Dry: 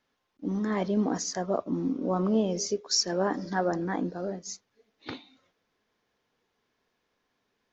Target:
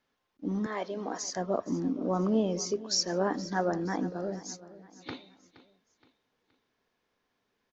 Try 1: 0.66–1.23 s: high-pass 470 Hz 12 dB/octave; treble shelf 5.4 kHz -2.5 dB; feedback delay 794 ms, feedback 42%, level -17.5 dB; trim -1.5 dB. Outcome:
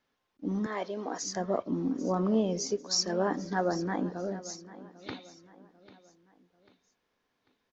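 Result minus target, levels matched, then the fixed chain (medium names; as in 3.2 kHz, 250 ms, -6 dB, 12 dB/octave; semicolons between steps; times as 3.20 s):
echo 323 ms late
0.66–1.23 s: high-pass 470 Hz 12 dB/octave; treble shelf 5.4 kHz -2.5 dB; feedback delay 471 ms, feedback 42%, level -17.5 dB; trim -1.5 dB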